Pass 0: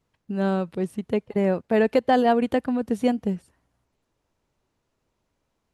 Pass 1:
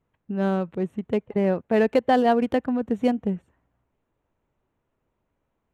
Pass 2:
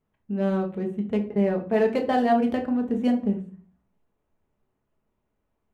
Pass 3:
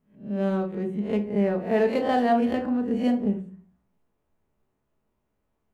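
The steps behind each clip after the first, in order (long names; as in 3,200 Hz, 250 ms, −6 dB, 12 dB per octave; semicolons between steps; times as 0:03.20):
adaptive Wiener filter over 9 samples
rectangular room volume 330 cubic metres, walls furnished, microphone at 1.4 metres; level −4.5 dB
peak hold with a rise ahead of every peak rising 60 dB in 0.38 s; level −1 dB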